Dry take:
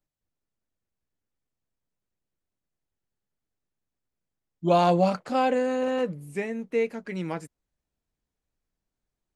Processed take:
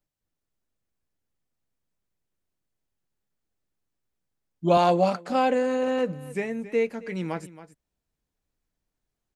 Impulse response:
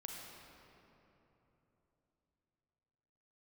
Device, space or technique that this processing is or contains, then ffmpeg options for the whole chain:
ducked delay: -filter_complex "[0:a]asplit=3[link_01][link_02][link_03];[link_02]adelay=273,volume=-6dB[link_04];[link_03]apad=whole_len=424797[link_05];[link_04][link_05]sidechaincompress=threshold=-35dB:ratio=10:attack=21:release=1290[link_06];[link_01][link_06]amix=inputs=2:normalize=0,asettb=1/sr,asplit=3[link_07][link_08][link_09];[link_07]atrim=end=4.774[link_10];[link_08]atrim=start=4.77:end=5.3,asetpts=PTS-STARTPTS,afade=type=in:duration=0.004:curve=qsin,afade=type=out:start_time=0.526:duration=0.004:curve=qsin,highpass=200[link_11];[link_09]atrim=start=5.296[link_12];[link_10][link_11]acrossfade=duration=0.004:curve1=hsin:curve2=qsin[link_13];[link_13][link_12]acrossfade=duration=0.004:curve1=qsin:curve2=hsin,volume=1dB"

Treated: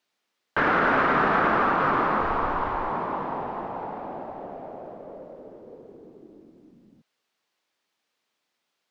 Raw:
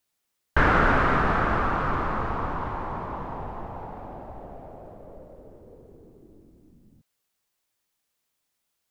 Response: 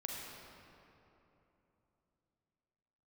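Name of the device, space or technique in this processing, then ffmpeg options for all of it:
DJ mixer with the lows and highs turned down: -filter_complex "[0:a]acrossover=split=170 5500:gain=0.0794 1 0.141[link_01][link_02][link_03];[link_01][link_02][link_03]amix=inputs=3:normalize=0,alimiter=limit=-18.5dB:level=0:latency=1:release=38,asplit=3[link_04][link_05][link_06];[link_04]afade=type=out:start_time=2.21:duration=0.02[link_07];[link_05]asubboost=boost=9.5:cutoff=64,afade=type=in:start_time=2.21:duration=0.02,afade=type=out:start_time=2.88:duration=0.02[link_08];[link_06]afade=type=in:start_time=2.88:duration=0.02[link_09];[link_07][link_08][link_09]amix=inputs=3:normalize=0,volume=5.5dB"

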